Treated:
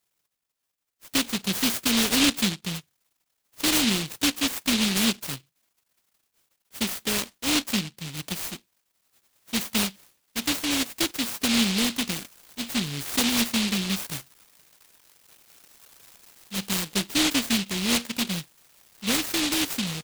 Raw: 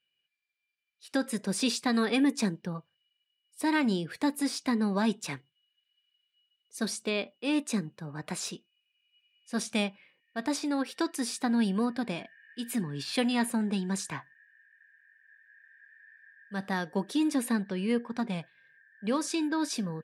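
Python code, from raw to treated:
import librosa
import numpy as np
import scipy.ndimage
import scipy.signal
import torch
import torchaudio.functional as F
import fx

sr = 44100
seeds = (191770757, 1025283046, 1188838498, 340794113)

y = fx.noise_mod_delay(x, sr, seeds[0], noise_hz=3200.0, depth_ms=0.49)
y = y * librosa.db_to_amplitude(4.0)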